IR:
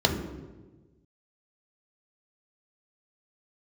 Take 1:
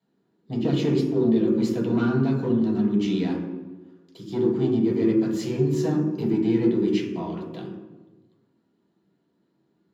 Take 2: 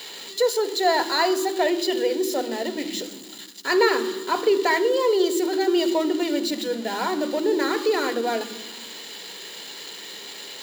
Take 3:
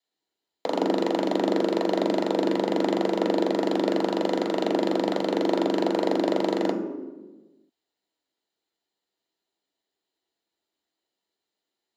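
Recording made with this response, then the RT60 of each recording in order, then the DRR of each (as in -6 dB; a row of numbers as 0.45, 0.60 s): 3; 1.3, 1.3, 1.3 s; -5.0, 9.5, 1.0 dB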